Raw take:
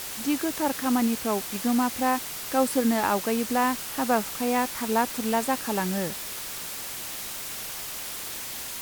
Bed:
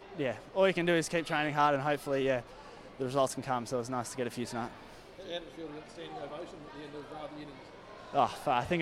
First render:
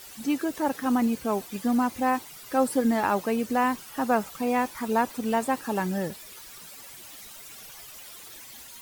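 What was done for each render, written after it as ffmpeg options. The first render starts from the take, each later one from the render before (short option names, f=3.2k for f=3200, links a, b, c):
-af "afftdn=nr=13:nf=-36"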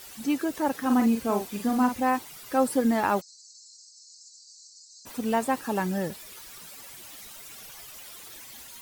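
-filter_complex "[0:a]asettb=1/sr,asplit=3[a][b][c];[a]atrim=end=0.854[d];[b]atrim=start=0.85:end=1.95,asetpts=PTS-STARTPTS,afade=t=in:d=0.004:c=qsin,afade=t=out:st=1.096:d=0.004:c=qsin,asplit=2[e][f];[f]adelay=44,volume=-6dB[g];[e][g]amix=inputs=2:normalize=0,atrim=end_sample=48510[h];[c]atrim=start=1.946[i];[d][h]acrossfade=d=0.004:c1=hsin:c2=qsin[j];[j][i]acrossfade=d=0.004:c1=qsin:c2=hsin,asplit=3[k][l][m];[k]afade=t=out:st=3.2:d=0.02[n];[l]asuperpass=centerf=5800:order=20:qfactor=1.5,afade=t=in:st=3.2:d=0.02,afade=t=out:st=5.05:d=0.02[o];[m]afade=t=in:st=5.05:d=0.02[p];[n][o][p]amix=inputs=3:normalize=0"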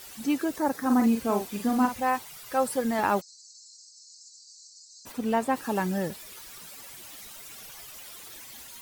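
-filter_complex "[0:a]asettb=1/sr,asplit=3[a][b][c];[a]atrim=end=0.564[d];[b]atrim=start=0.56:end=1.04,asetpts=PTS-STARTPTS,afade=t=in:d=0.004:c=qsin,afade=t=out:st=0.476:d=0.004:c=qsin,equalizer=f=2.9k:t=o:w=0.47:g=-10[e];[c]atrim=start=1.036[f];[d][e]acrossfade=d=0.004:c1=hsin:c2=qsin[g];[g][f]acrossfade=d=0.004:c1=qsin:c2=hsin,asettb=1/sr,asplit=3[h][i][j];[h]atrim=end=1.854[k];[i]atrim=start=1.85:end=2.99,asetpts=PTS-STARTPTS,afade=t=in:d=0.004:c=qsin,afade=t=out:st=1.136:d=0.004:c=qsin,equalizer=f=290:t=o:w=0.77:g=-9.5[l];[j]atrim=start=2.986[m];[k][l]acrossfade=d=0.004:c1=hsin:c2=qsin[n];[n][m]acrossfade=d=0.004:c1=qsin:c2=hsin,asettb=1/sr,asplit=3[o][p][q];[o]atrim=end=5.124[r];[p]atrim=start=5.12:end=5.56,asetpts=PTS-STARTPTS,afade=t=in:d=0.004:c=qsin,afade=t=out:st=0.436:d=0.004:c=qsin,highshelf=f=4k:g=-6[s];[q]atrim=start=5.556[t];[r][s]acrossfade=d=0.004:c1=hsin:c2=qsin[u];[u][t]acrossfade=d=0.004:c1=qsin:c2=hsin"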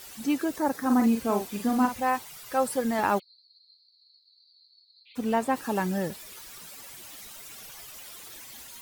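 -filter_complex "[0:a]asplit=3[a][b][c];[a]afade=t=out:st=3.18:d=0.02[d];[b]asuperpass=centerf=3100:order=20:qfactor=1.3,afade=t=in:st=3.18:d=0.02,afade=t=out:st=5.15:d=0.02[e];[c]afade=t=in:st=5.15:d=0.02[f];[d][e][f]amix=inputs=3:normalize=0"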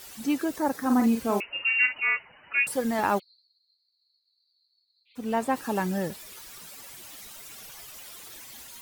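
-filter_complex "[0:a]asettb=1/sr,asplit=3[a][b][c];[a]atrim=end=1.404[d];[b]atrim=start=1.4:end=2.67,asetpts=PTS-STARTPTS,afade=t=in:d=0.004:c=qsin,afade=t=out:st=1.266:d=0.004:c=qsin,lowpass=f=2.6k:t=q:w=0.5098,lowpass=f=2.6k:t=q:w=0.6013,lowpass=f=2.6k:t=q:w=0.9,lowpass=f=2.6k:t=q:w=2.563,afreqshift=-3000[e];[c]atrim=start=2.666[f];[d][e]acrossfade=d=0.004:c1=hsin:c2=qsin[g];[g][f]acrossfade=d=0.004:c1=qsin:c2=hsin,asplit=3[h][i][j];[h]atrim=end=3.55,asetpts=PTS-STARTPTS,afade=t=out:st=3.17:d=0.38:silence=0.266073[k];[i]atrim=start=3.55:end=5.05,asetpts=PTS-STARTPTS,volume=-11.5dB[l];[j]atrim=start=5.05,asetpts=PTS-STARTPTS,afade=t=in:d=0.38:silence=0.266073[m];[k][l][m]concat=n=3:v=0:a=1"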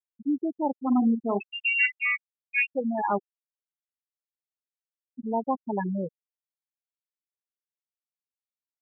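-af "afftfilt=real='re*gte(hypot(re,im),0.178)':imag='im*gte(hypot(re,im),0.178)':win_size=1024:overlap=0.75"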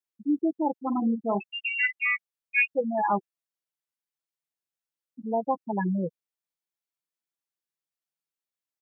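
-af "highpass=74,aecho=1:1:6:0.53"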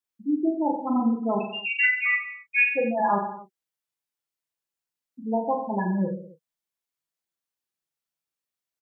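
-filter_complex "[0:a]asplit=2[a][b];[b]adelay=32,volume=-12.5dB[c];[a][c]amix=inputs=2:normalize=0,aecho=1:1:40|86|138.9|199.7|269.7:0.631|0.398|0.251|0.158|0.1"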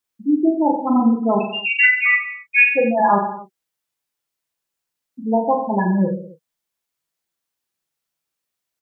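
-af "volume=7.5dB"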